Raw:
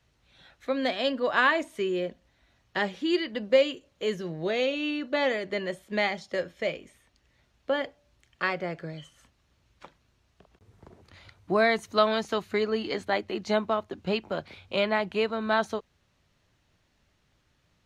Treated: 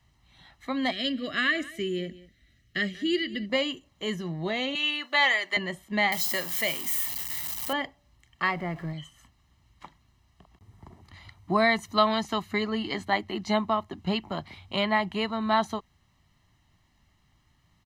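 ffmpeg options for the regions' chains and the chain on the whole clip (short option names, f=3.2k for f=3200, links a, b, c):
-filter_complex "[0:a]asettb=1/sr,asplit=3[a][b][c];[a]atrim=end=0.914[d];[b]atrim=start=0.91:end=3.5,asetpts=PTS-STARTPTS,afade=t=in:d=0.004:c=qsin,afade=t=out:st=2.586:d=0.004:c=qsin,asuperstop=centerf=910:order=4:qfactor=1,aecho=1:1:191:0.112,atrim=end_sample=114219[e];[c]atrim=start=3.496[f];[d][e]acrossfade=d=0.004:c1=hsin:c2=qsin[g];[g][f]acrossfade=d=0.004:c1=qsin:c2=hsin,asettb=1/sr,asplit=3[h][i][j];[h]atrim=end=4.754[k];[i]atrim=start=4.75:end=5.57,asetpts=PTS-STARTPTS,afade=t=in:d=0.004:c=qsin,afade=t=out:st=0.816:d=0.004:c=qsin,highpass=410,tiltshelf=f=650:g=-8[l];[j]atrim=start=5.566[m];[k][l]acrossfade=d=0.004:c1=hsin:c2=qsin[n];[n][m]acrossfade=d=0.004:c1=qsin:c2=hsin,asettb=1/sr,asplit=3[o][p][q];[o]atrim=end=6.124[r];[p]atrim=start=6.12:end=7.73,asetpts=PTS-STARTPTS,afade=t=in:d=0.004:c=qsin,afade=t=out:st=1.606:d=0.004:c=qsin,aeval=exprs='val(0)+0.5*0.0112*sgn(val(0))':c=same,highpass=f=280:p=1,aemphasis=mode=production:type=75kf[s];[q]atrim=start=7.726[t];[r][s]acrossfade=d=0.004:c1=hsin:c2=qsin[u];[u][t]acrossfade=d=0.004:c1=qsin:c2=hsin,asettb=1/sr,asplit=3[v][w][x];[v]atrim=end=8.514[y];[w]atrim=start=8.51:end=8.93,asetpts=PTS-STARTPTS,afade=t=in:d=0.004:c=qsin,afade=t=out:st=0.416:d=0.004:c=qsin,aeval=exprs='val(0)+0.5*0.00708*sgn(val(0))':c=same,lowpass=f=2k:p=1[z];[x]atrim=start=8.926[aa];[y][z]acrossfade=d=0.004:c1=hsin:c2=qsin[ab];[ab][aa]acrossfade=d=0.004:c1=qsin:c2=hsin,lowpass=f=2.4k:p=1,aemphasis=mode=production:type=50fm,aecho=1:1:1:0.7,volume=1dB"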